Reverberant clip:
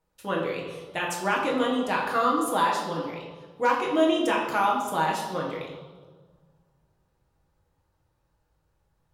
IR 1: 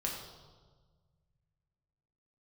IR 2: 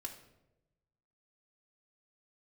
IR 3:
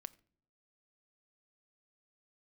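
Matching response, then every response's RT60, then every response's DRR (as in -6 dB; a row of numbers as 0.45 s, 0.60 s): 1; 1.5 s, 0.95 s, 0.65 s; -2.5 dB, 0.0 dB, 15.5 dB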